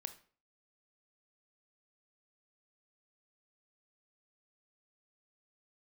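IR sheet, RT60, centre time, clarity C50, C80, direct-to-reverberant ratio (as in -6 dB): 0.45 s, 7 ms, 13.5 dB, 18.5 dB, 9.5 dB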